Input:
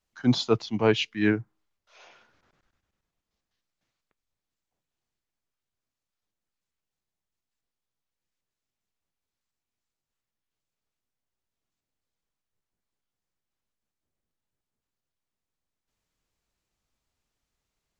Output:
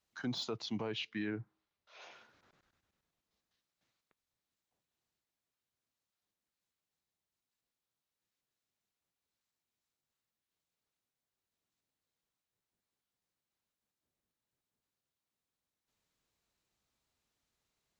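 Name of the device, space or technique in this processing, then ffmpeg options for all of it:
broadcast voice chain: -filter_complex "[0:a]highpass=frequency=92:poles=1,deesser=0.8,acompressor=threshold=-26dB:ratio=5,equalizer=frequency=3900:width_type=o:width=0.21:gain=3.5,alimiter=level_in=3.5dB:limit=-24dB:level=0:latency=1:release=72,volume=-3.5dB,asettb=1/sr,asplit=3[link_01][link_02][link_03];[link_01]atrim=end=0.944[link_04];[link_02]atrim=start=0.94:end=2.02,asetpts=PTS-STARTPTS,afade=type=in:duration=0.004:curve=qsin,afade=type=out:start_time=1.076:duration=0.004:curve=qsin,lowpass=5000[link_05];[link_03]atrim=start=2.016[link_06];[link_04][link_05]acrossfade=duration=0.004:curve1=hsin:curve2=qsin[link_07];[link_07][link_06]acrossfade=duration=0.004:curve1=qsin:curve2=hsin,volume=-1.5dB"

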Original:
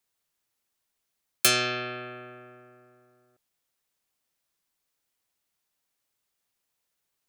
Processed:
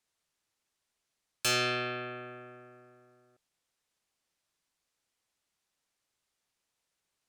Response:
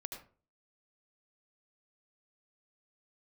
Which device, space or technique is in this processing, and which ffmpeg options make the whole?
saturation between pre-emphasis and de-emphasis: -af "lowpass=9300,highshelf=frequency=4500:gain=7,asoftclip=type=tanh:threshold=-21.5dB,highshelf=frequency=4500:gain=-7"

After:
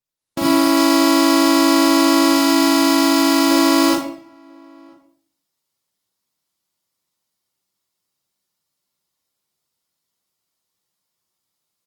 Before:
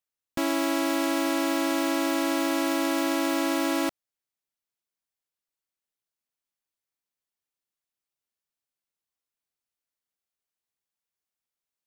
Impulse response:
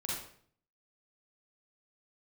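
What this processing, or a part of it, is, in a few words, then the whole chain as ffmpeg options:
far-field microphone of a smart speaker: -filter_complex "[0:a]asettb=1/sr,asplit=3[link_01][link_02][link_03];[link_01]atrim=end=2.284[link_04];[link_02]atrim=start=2.28:end=3.51,asetpts=PTS-STARTPTS,afade=type=in:duration=0.004:curve=qsin,afade=type=out:start_time=1.226:duration=0.004:curve=qsin,bandreject=frequency=110.7:width_type=h:width=4,bandreject=frequency=221.4:width_type=h:width=4,bandreject=frequency=332.1:width_type=h:width=4,bandreject=frequency=442.8:width_type=h:width=4,bandreject=frequency=553.5:width_type=h:width=4,bandreject=frequency=664.2:width_type=h:width=4,bandreject=frequency=774.9:width_type=h:width=4,bandreject=frequency=885.6:width_type=h:width=4,bandreject=frequency=996.3:width_type=h:width=4,bandreject=frequency=1107:width_type=h:width=4,bandreject=frequency=1217.7:width_type=h:width=4,bandreject=frequency=1328.4:width_type=h:width=4,bandreject=frequency=1439.1:width_type=h:width=4,bandreject=frequency=1549.8:width_type=h:width=4,bandreject=frequency=1660.5:width_type=h:width=4,bandreject=frequency=1771.2:width_type=h:width=4,bandreject=frequency=1881.9:width_type=h:width=4,bandreject=frequency=1992.6:width_type=h:width=4,bandreject=frequency=2103.3:width_type=h:width=4,bandreject=frequency=2214:width_type=h:width=4,bandreject=frequency=2324.7:width_type=h:width=4,bandreject=frequency=2435.4:width_type=h:width=4,bandreject=frequency=2546.1:width_type=h:width=4,bandreject=frequency=2656.8:width_type=h:width=4,bandreject=frequency=2767.5:width_type=h:width=4,bandreject=frequency=2878.2:width_type=h:width=4,bandreject=frequency=2988.9:width_type=h:width=4,bandreject=frequency=3099.6:width_type=h:width=4[link_05];[link_03]atrim=start=3.506[link_06];[link_04][link_05]acrossfade=duration=0.004:curve1=hsin:curve2=qsin[link_07];[link_07][link_06]acrossfade=duration=0.004:curve1=qsin:curve2=hsin,equalizer=frequency=160:width_type=o:width=0.33:gain=4,equalizer=frequency=1600:width_type=o:width=0.33:gain=-6,equalizer=frequency=2500:width_type=o:width=0.33:gain=-6,equalizer=frequency=5000:width_type=o:width=0.33:gain=4,asplit=2[link_08][link_09];[link_09]adelay=991.3,volume=-30dB,highshelf=frequency=4000:gain=-22.3[link_10];[link_08][link_10]amix=inputs=2:normalize=0[link_11];[1:a]atrim=start_sample=2205[link_12];[link_11][link_12]afir=irnorm=-1:irlink=0,highpass=87,dynaudnorm=framelen=160:gausssize=3:maxgain=11dB" -ar 48000 -c:a libopus -b:a 32k

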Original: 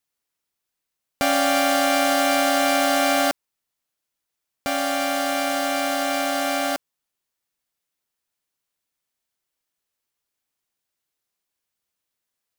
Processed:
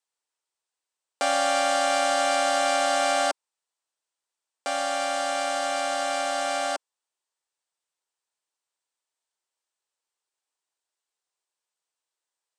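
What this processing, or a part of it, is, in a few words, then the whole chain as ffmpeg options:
phone speaker on a table: -af "highpass=frequency=360:width=0.5412,highpass=frequency=360:width=1.3066,equalizer=frequency=920:width_type=q:width=4:gain=5,equalizer=frequency=2200:width_type=q:width=4:gain=-3,equalizer=frequency=8300:width_type=q:width=4:gain=6,lowpass=frequency=8700:width=0.5412,lowpass=frequency=8700:width=1.3066,volume=-3.5dB"

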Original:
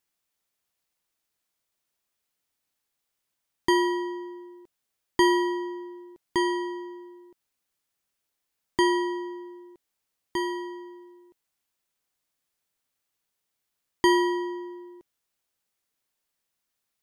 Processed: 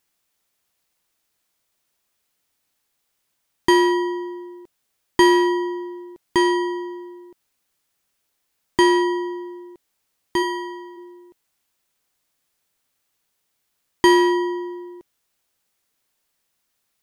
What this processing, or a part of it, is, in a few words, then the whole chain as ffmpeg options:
parallel distortion: -filter_complex "[0:a]asplit=2[link_01][link_02];[link_02]asoftclip=type=hard:threshold=-22.5dB,volume=-6.5dB[link_03];[link_01][link_03]amix=inputs=2:normalize=0,asplit=3[link_04][link_05][link_06];[link_04]afade=type=out:start_time=10.42:duration=0.02[link_07];[link_05]highpass=400,afade=type=in:start_time=10.42:duration=0.02,afade=type=out:start_time=10.96:duration=0.02[link_08];[link_06]afade=type=in:start_time=10.96:duration=0.02[link_09];[link_07][link_08][link_09]amix=inputs=3:normalize=0,volume=4.5dB"

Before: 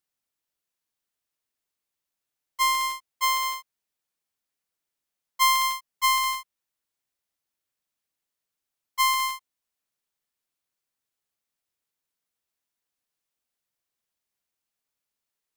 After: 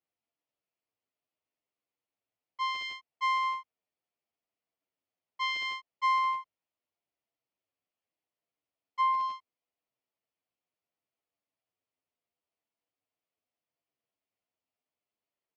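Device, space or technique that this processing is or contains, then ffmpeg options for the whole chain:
barber-pole flanger into a guitar amplifier: -filter_complex "[0:a]asplit=2[link_01][link_02];[link_02]adelay=9.4,afreqshift=-0.74[link_03];[link_01][link_03]amix=inputs=2:normalize=1,asoftclip=type=tanh:threshold=-20.5dB,highpass=80,equalizer=frequency=100:width_type=q:width=4:gain=5,equalizer=frequency=290:width_type=q:width=4:gain=5,equalizer=frequency=470:width_type=q:width=4:gain=4,equalizer=frequency=670:width_type=q:width=4:gain=7,equalizer=frequency=1600:width_type=q:width=4:gain=-7,equalizer=frequency=3800:width_type=q:width=4:gain=-8,lowpass=frequency=4200:width=0.5412,lowpass=frequency=4200:width=1.3066"

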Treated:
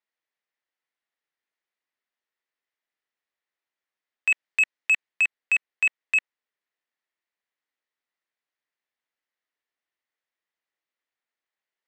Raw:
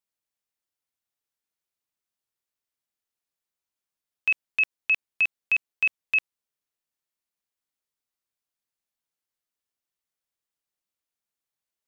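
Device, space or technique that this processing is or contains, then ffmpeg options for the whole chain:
intercom: -filter_complex "[0:a]asettb=1/sr,asplit=3[link_01][link_02][link_03];[link_01]atrim=end=4.314[link_04];[link_02]atrim=start=4.31:end=5.09,asetpts=PTS-STARTPTS,afade=type=in:duration=0.004:curve=qsin,afade=type=out:start_time=0.776:duration=0.004:curve=qsin,highshelf=frequency=3400:gain=4[link_05];[link_03]atrim=start=5.086[link_06];[link_04][link_05]acrossfade=duration=0.004:curve1=hsin:curve2=qsin[link_07];[link_07][link_06]acrossfade=duration=0.004:curve1=qsin:curve2=hsin,highpass=300,lowpass=3600,equalizer=frequency=1900:width_type=o:width=0.36:gain=8,asoftclip=type=tanh:threshold=-16dB,volume=2.5dB"

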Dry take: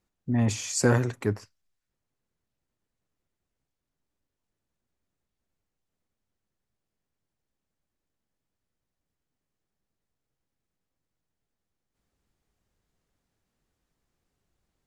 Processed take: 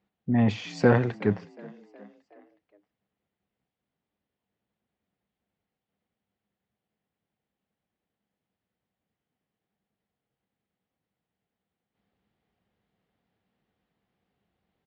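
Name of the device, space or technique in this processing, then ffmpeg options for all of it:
frequency-shifting delay pedal into a guitar cabinet: -filter_complex "[0:a]asplit=5[link_01][link_02][link_03][link_04][link_05];[link_02]adelay=367,afreqshift=50,volume=-23dB[link_06];[link_03]adelay=734,afreqshift=100,volume=-28.2dB[link_07];[link_04]adelay=1101,afreqshift=150,volume=-33.4dB[link_08];[link_05]adelay=1468,afreqshift=200,volume=-38.6dB[link_09];[link_01][link_06][link_07][link_08][link_09]amix=inputs=5:normalize=0,highpass=81,equalizer=frequency=200:width_type=q:width=4:gain=8,equalizer=frequency=470:width_type=q:width=4:gain=4,equalizer=frequency=750:width_type=q:width=4:gain=6,equalizer=frequency=2000:width_type=q:width=4:gain=3,equalizer=frequency=3100:width_type=q:width=4:gain=3,lowpass=frequency=3900:width=0.5412,lowpass=frequency=3900:width=1.3066"

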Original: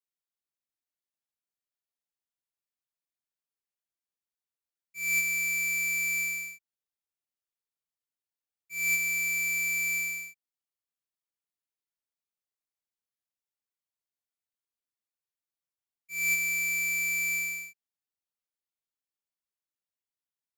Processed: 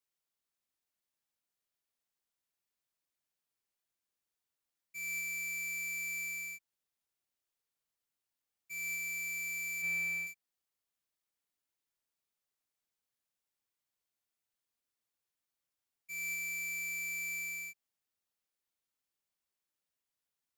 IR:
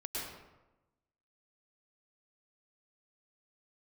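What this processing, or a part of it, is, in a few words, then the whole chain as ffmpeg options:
de-esser from a sidechain: -filter_complex "[0:a]asettb=1/sr,asplit=3[link_01][link_02][link_03];[link_01]atrim=end=9.824[link_04];[link_02]atrim=start=9.82:end=10.27,asetpts=PTS-STARTPTS,afade=type=in:duration=0.004:curve=qsin,afade=type=out:start_time=0.446:duration=0.004:curve=qsin,bass=frequency=250:gain=3,treble=frequency=4000:gain=-10[link_05];[link_03]atrim=start=10.266[link_06];[link_04][link_05]acrossfade=duration=0.004:curve1=hsin:curve2=qsin[link_07];[link_07][link_06]acrossfade=duration=0.004:curve1=qsin:curve2=hsin,asplit=2[link_08][link_09];[link_09]highpass=frequency=4800:width=0.5412,highpass=frequency=4800:width=1.3066,apad=whole_len=907491[link_10];[link_08][link_10]sidechaincompress=threshold=-50dB:ratio=3:attack=0.91:release=39,volume=3.5dB"

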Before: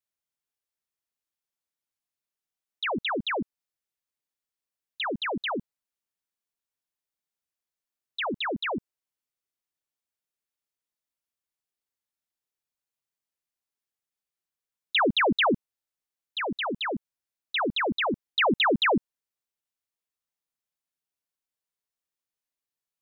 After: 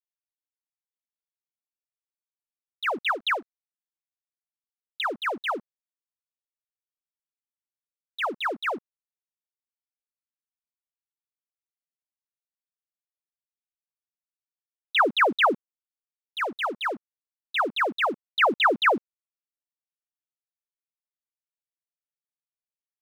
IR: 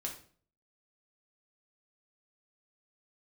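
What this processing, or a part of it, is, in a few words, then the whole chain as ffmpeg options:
pocket radio on a weak battery: -filter_complex "[0:a]asettb=1/sr,asplit=3[link_01][link_02][link_03];[link_01]atrim=end=3.064[link_04];[link_02]atrim=start=3.06:end=5.01,asetpts=PTS-STARTPTS,afade=type=in:duration=0.004:curve=qsin,afade=type=out:start_time=1.946:duration=0.004:curve=qsin,aemphasis=mode=production:type=riaa[link_05];[link_03]atrim=start=5.006[link_06];[link_04][link_05]acrossfade=duration=0.004:curve1=hsin:curve2=qsin[link_07];[link_07][link_06]acrossfade=duration=0.004:curve1=qsin:curve2=hsin,highpass=380,lowpass=3100,aeval=exprs='sgn(val(0))*max(abs(val(0))-0.00316,0)':channel_layout=same,equalizer=frequency=1300:width_type=o:width=0.34:gain=6,volume=2.5dB"

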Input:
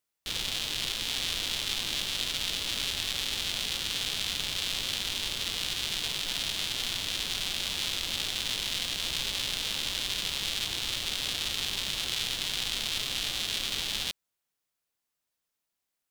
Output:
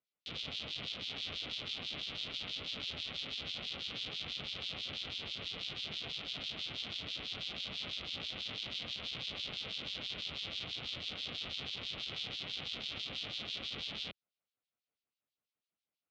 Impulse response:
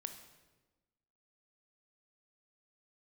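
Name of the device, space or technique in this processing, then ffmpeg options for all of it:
guitar amplifier with harmonic tremolo: -filter_complex "[0:a]acrossover=split=2400[link_01][link_02];[link_01]aeval=exprs='val(0)*(1-1/2+1/2*cos(2*PI*6.1*n/s))':channel_layout=same[link_03];[link_02]aeval=exprs='val(0)*(1-1/2-1/2*cos(2*PI*6.1*n/s))':channel_layout=same[link_04];[link_03][link_04]amix=inputs=2:normalize=0,asoftclip=type=tanh:threshold=-26dB,highpass=84,equalizer=frequency=350:width_type=q:width=4:gain=-3,equalizer=frequency=950:width_type=q:width=4:gain=-9,equalizer=frequency=1700:width_type=q:width=4:gain=-9,lowpass=frequency=4400:width=0.5412,lowpass=frequency=4400:width=1.3066,highshelf=frequency=11000:gain=-5"

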